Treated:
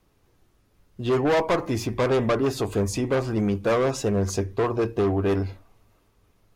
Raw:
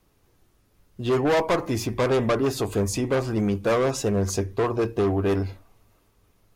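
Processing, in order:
high-shelf EQ 7,300 Hz −5.5 dB

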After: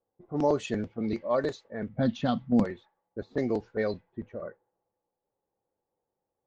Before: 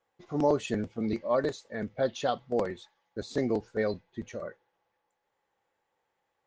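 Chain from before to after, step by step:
low-pass that shuts in the quiet parts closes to 540 Hz, open at −23 dBFS
0:01.89–0:02.64: low shelf with overshoot 310 Hz +9 dB, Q 3

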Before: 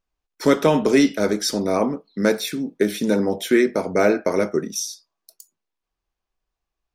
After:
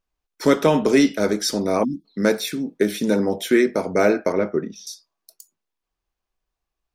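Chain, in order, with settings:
0:01.84–0:02.05: time-frequency box erased 360–3,300 Hz
0:04.32–0:04.87: high-frequency loss of the air 280 metres

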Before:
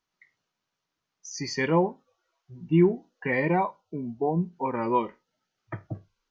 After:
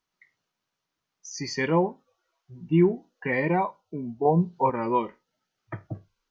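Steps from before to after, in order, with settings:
0:04.25–0:04.70: octave-band graphic EQ 125/250/500/1,000/2,000/4,000 Hz +10/−4/+7/+6/−4/+10 dB

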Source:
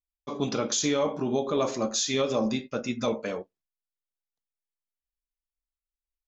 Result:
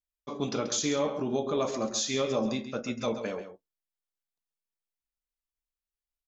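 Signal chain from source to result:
slap from a distant wall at 23 metres, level −10 dB
level −3 dB

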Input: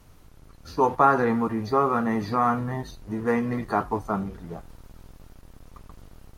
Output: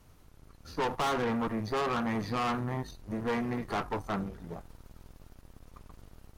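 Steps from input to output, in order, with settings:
tube saturation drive 27 dB, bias 0.8

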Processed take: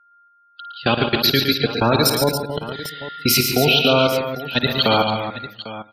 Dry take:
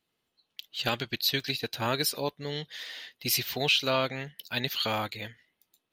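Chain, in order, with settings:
delay that plays each chunk backwards 173 ms, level −11 dB
Bessel high-pass filter 160 Hz, order 4
low-shelf EQ 400 Hz +8.5 dB
steady tone 1,400 Hz −40 dBFS
sine wavefolder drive 6 dB, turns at −9.5 dBFS
noise gate with hold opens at −21 dBFS
gate on every frequency bin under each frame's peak −20 dB strong
output level in coarse steps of 20 dB
multi-tap delay 53/113/142/216/279/798 ms −13/−8/−8.5/−16/−9.5/−15 dB
level +4 dB

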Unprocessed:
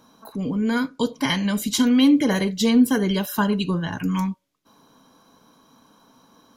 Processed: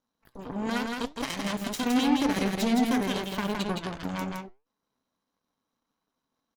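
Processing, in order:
0:02.36–0:02.90: low shelf with overshoot 140 Hz −13 dB, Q 3
brickwall limiter −14 dBFS, peak gain reduction 12 dB
harmonic generator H 3 −10 dB, 8 −22 dB, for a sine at −14 dBFS
flanger 1.5 Hz, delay 3.4 ms, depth 5.1 ms, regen +84%
on a send: single-tap delay 165 ms −3.5 dB

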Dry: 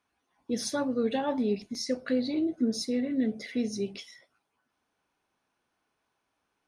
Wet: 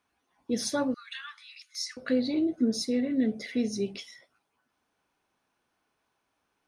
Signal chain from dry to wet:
0:00.94–0:01.97: Butterworth high-pass 1,200 Hz 72 dB per octave
level +1.5 dB

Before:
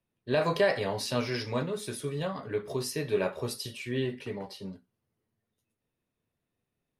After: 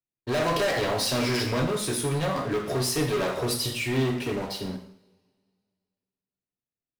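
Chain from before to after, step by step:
leveller curve on the samples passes 5
coupled-rooms reverb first 0.6 s, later 2.1 s, from −25 dB, DRR 3.5 dB
level −8 dB

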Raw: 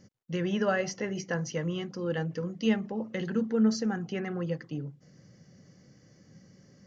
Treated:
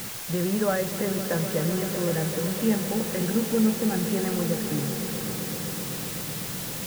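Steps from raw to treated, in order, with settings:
converter with a step at zero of −42 dBFS
low-pass filter 1,500 Hz 12 dB per octave
in parallel at −0.5 dB: downward compressor, threshold −34 dBFS, peak gain reduction 14 dB
on the sum: bit-depth reduction 6 bits, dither triangular
on a send: echo that builds up and dies away 128 ms, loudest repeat 5, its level −14 dB

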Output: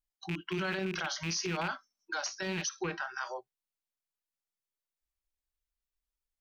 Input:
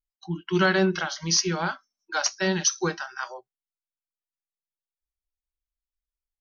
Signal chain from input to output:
loose part that buzzes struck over −39 dBFS, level −20 dBFS
0:02.69–0:03.14: low-pass filter 2,900 Hz 12 dB per octave
brickwall limiter −25.5 dBFS, peak gain reduction 16 dB

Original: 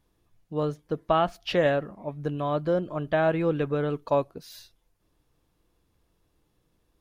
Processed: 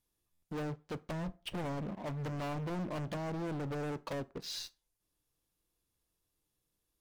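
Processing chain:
treble cut that deepens with the level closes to 2,400 Hz, closed at −23 dBFS
first-order pre-emphasis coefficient 0.8
treble cut that deepens with the level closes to 320 Hz, closed at −35.5 dBFS
0:01.10–0:03.17: dynamic equaliser 190 Hz, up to +6 dB, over −58 dBFS, Q 1.1
leveller curve on the samples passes 3
hard clipping −39 dBFS, distortion −8 dB
convolution reverb RT60 0.35 s, pre-delay 7 ms, DRR 16.5 dB
buffer that repeats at 0:00.32, samples 512, times 8
level +3 dB

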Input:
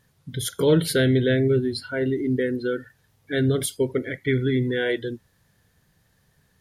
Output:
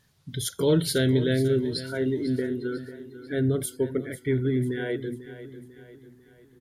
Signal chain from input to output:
parametric band 4,500 Hz +5.5 dB 1.6 octaves, from 0:02.39 −5 dB
notch filter 500 Hz, Q 12
dynamic equaliser 2,400 Hz, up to −6 dB, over −40 dBFS, Q 0.7
repeating echo 496 ms, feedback 47%, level −14 dB
level −2.5 dB

